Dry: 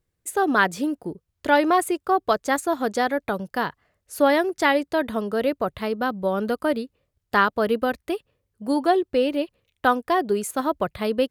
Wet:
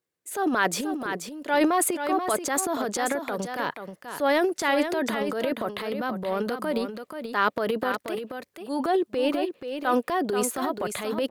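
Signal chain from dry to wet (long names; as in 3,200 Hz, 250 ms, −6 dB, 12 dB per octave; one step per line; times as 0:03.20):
high-pass filter 270 Hz 12 dB per octave
transient designer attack −5 dB, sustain +11 dB
single-tap delay 482 ms −8 dB
level −3.5 dB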